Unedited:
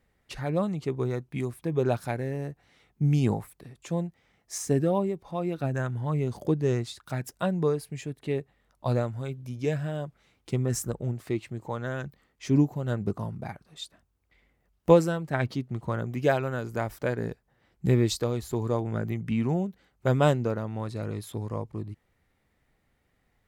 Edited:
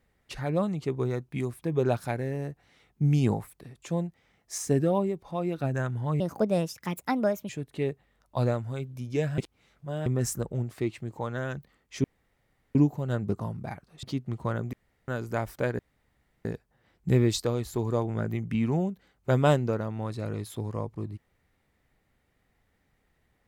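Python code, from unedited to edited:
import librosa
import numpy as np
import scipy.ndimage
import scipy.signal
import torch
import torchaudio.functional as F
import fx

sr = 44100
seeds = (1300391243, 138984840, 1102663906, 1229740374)

y = fx.edit(x, sr, fx.speed_span(start_s=6.2, length_s=1.78, speed=1.38),
    fx.reverse_span(start_s=9.87, length_s=0.68),
    fx.insert_room_tone(at_s=12.53, length_s=0.71),
    fx.cut(start_s=13.81, length_s=1.65),
    fx.room_tone_fill(start_s=16.16, length_s=0.35),
    fx.insert_room_tone(at_s=17.22, length_s=0.66), tone=tone)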